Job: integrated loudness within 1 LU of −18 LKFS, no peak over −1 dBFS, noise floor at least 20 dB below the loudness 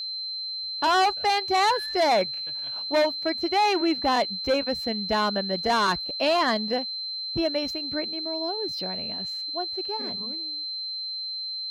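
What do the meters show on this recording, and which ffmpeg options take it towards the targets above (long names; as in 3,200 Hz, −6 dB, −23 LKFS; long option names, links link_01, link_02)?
interfering tone 4,100 Hz; level of the tone −30 dBFS; integrated loudness −25.5 LKFS; sample peak −14.0 dBFS; target loudness −18.0 LKFS
→ -af "bandreject=frequency=4100:width=30"
-af "volume=7.5dB"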